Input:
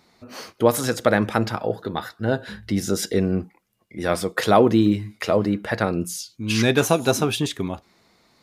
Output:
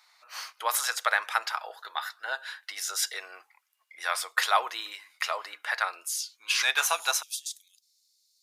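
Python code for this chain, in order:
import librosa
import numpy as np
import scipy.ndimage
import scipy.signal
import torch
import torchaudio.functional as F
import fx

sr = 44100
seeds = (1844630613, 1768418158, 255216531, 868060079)

y = fx.cheby2_highpass(x, sr, hz=fx.steps((0.0, 160.0), (7.21, 860.0)), order=4, stop_db=80)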